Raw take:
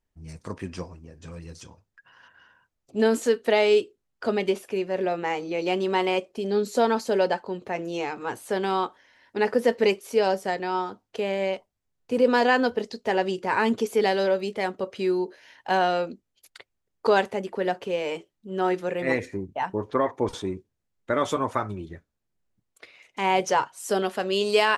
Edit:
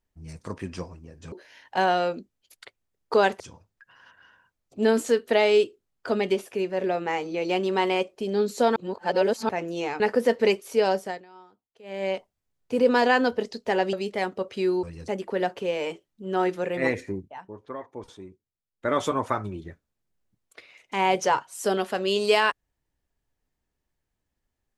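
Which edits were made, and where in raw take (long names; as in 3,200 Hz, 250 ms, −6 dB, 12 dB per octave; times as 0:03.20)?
0:01.32–0:01.57: swap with 0:15.25–0:17.33
0:06.93–0:07.66: reverse
0:08.17–0:09.39: remove
0:10.36–0:11.50: duck −22.5 dB, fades 0.28 s
0:13.32–0:14.35: remove
0:19.44–0:21.15: duck −13 dB, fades 0.13 s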